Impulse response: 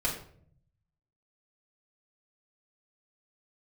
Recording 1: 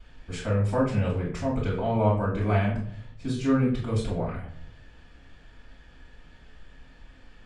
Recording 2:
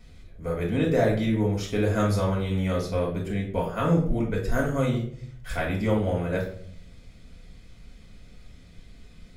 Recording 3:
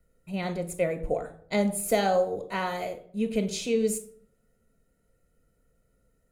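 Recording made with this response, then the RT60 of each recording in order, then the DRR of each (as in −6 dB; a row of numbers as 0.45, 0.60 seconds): 2; 0.60, 0.60, 0.60 seconds; −10.5, −3.0, 7.0 decibels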